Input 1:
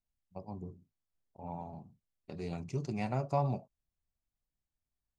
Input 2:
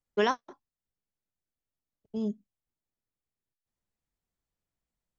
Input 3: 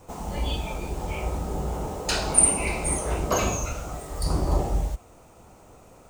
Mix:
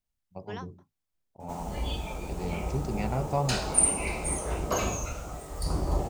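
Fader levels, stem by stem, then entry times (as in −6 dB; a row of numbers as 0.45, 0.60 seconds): +3.0, −14.5, −4.5 decibels; 0.00, 0.30, 1.40 seconds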